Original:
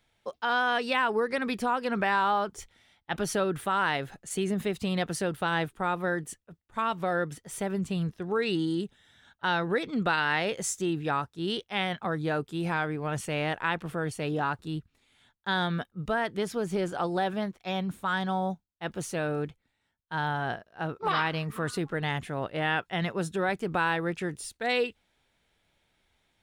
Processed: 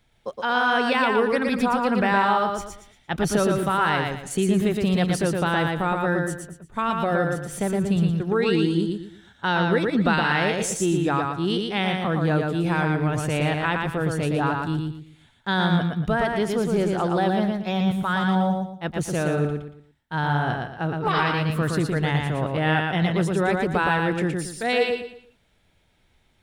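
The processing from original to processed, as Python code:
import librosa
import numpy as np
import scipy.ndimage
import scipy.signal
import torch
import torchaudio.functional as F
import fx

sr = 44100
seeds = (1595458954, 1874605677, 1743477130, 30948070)

y = fx.low_shelf(x, sr, hz=280.0, db=7.5)
y = fx.echo_feedback(y, sr, ms=116, feedback_pct=31, wet_db=-3.5)
y = y * librosa.db_to_amplitude(3.0)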